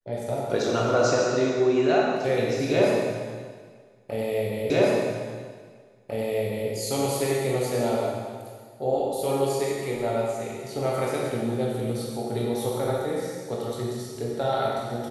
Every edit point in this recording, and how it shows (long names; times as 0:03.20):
0:04.70: the same again, the last 2 s